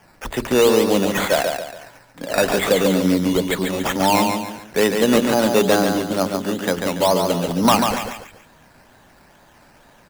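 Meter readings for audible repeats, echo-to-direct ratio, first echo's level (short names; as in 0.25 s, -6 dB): 3, -4.5 dB, -5.0 dB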